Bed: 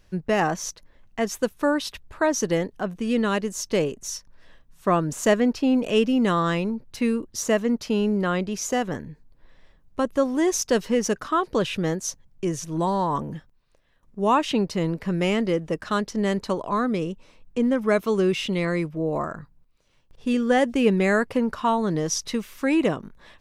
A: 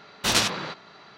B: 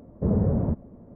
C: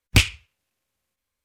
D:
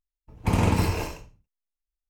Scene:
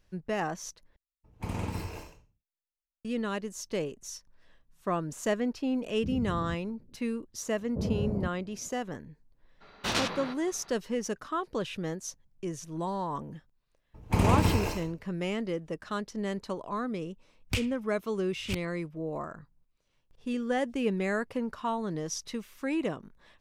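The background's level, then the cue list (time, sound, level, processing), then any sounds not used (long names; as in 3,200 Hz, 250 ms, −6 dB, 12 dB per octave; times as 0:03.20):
bed −9.5 dB
0:00.96: overwrite with D −12.5 dB
0:05.81: mix in B −13 dB + spectral envelope exaggerated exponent 3
0:07.54: mix in B −8.5 dB + low-pass filter 1,400 Hz
0:09.60: mix in A −5 dB, fades 0.02 s + high-shelf EQ 4,800 Hz −10.5 dB
0:13.66: mix in D −2 dB
0:17.37: mix in C −14.5 dB + delay that plays each chunk backwards 668 ms, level −5 dB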